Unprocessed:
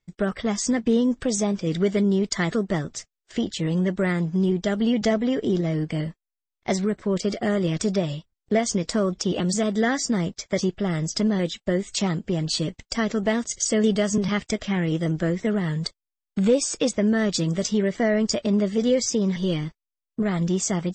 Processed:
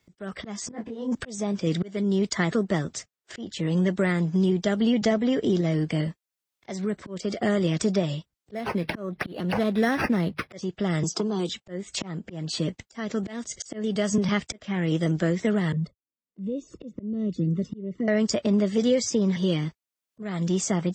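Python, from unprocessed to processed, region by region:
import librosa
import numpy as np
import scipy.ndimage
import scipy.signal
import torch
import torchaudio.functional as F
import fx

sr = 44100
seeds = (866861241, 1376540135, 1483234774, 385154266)

y = fx.chain(x, sr, fx.peak_eq(hz=820.0, db=8.5, octaves=1.5),
    fx.over_compress(threshold_db=-24.0, ratio=-0.5),
    fx.detune_double(cents=54), at=(0.71, 1.15))
y = fx.chain(y, sr, fx.high_shelf(hz=7100.0, db=9.0),
    fx.hum_notches(base_hz=50, count=3),
    fx.resample_linear(factor=6), at=(8.54, 10.52))
y = fx.chain(y, sr, fx.highpass(hz=240.0, slope=12),
    fx.fixed_phaser(hz=380.0, stages=8),
    fx.band_squash(depth_pct=100), at=(11.03, 11.49))
y = fx.chain(y, sr, fx.env_flanger(rest_ms=4.7, full_db=-18.0),
    fx.moving_average(points=55),
    fx.band_squash(depth_pct=40), at=(15.72, 18.08))
y = scipy.signal.sosfilt(scipy.signal.butter(2, 66.0, 'highpass', fs=sr, output='sos'), y)
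y = fx.auto_swell(y, sr, attack_ms=428.0)
y = fx.band_squash(y, sr, depth_pct=40)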